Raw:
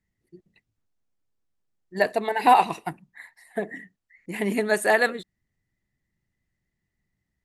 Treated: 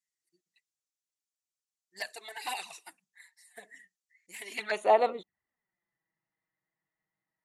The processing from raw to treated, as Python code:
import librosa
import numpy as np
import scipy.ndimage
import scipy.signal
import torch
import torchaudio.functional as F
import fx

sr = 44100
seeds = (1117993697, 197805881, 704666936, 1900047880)

y = fx.filter_sweep_bandpass(x, sr, from_hz=7100.0, to_hz=990.0, start_s=4.41, end_s=4.92, q=1.4)
y = fx.env_flanger(y, sr, rest_ms=6.3, full_db=-31.0)
y = F.gain(torch.from_numpy(y), 5.5).numpy()